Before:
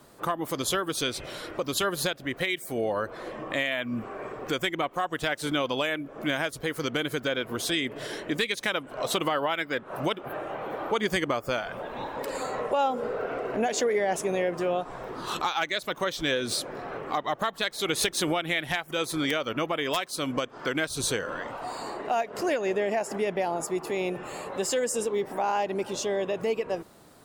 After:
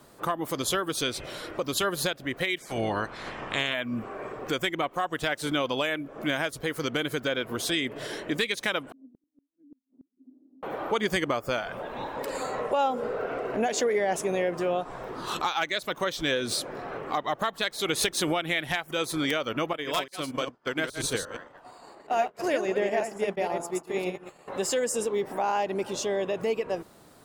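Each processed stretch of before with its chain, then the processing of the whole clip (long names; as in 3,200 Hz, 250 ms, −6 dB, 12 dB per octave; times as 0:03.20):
0:02.57–0:03.73: ceiling on every frequency bin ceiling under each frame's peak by 17 dB + low-pass filter 7,600 Hz
0:08.92–0:10.63: flat-topped band-pass 260 Hz, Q 7.7 + gate with flip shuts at −41 dBFS, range −35 dB
0:19.73–0:24.48: delay that plays each chunk backwards 117 ms, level −4.5 dB + downward expander −25 dBFS
whole clip: no processing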